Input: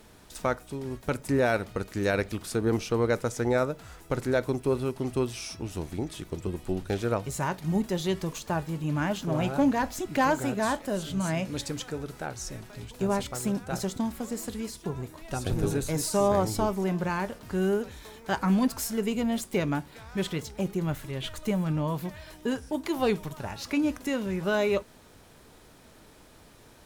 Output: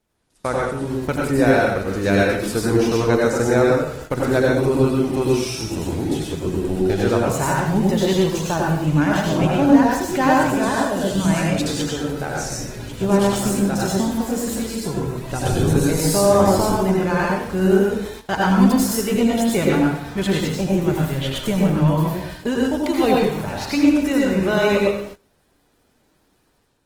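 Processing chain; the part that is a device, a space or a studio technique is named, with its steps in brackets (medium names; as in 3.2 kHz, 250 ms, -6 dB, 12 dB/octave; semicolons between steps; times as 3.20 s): speakerphone in a meeting room (reverberation RT60 0.70 s, pre-delay 80 ms, DRR -2.5 dB; level rider gain up to 6 dB; gate -34 dBFS, range -19 dB; Opus 20 kbps 48 kHz)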